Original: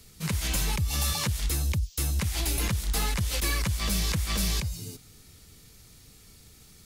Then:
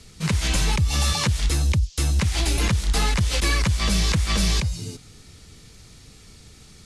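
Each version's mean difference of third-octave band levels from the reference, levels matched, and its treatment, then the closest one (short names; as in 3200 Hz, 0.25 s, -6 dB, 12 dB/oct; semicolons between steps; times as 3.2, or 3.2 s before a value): 3.0 dB: Bessel low-pass 7300 Hz, order 8; gain +7 dB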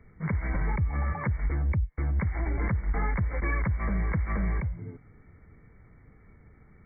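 15.0 dB: brick-wall FIR low-pass 2300 Hz; gain +1 dB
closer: first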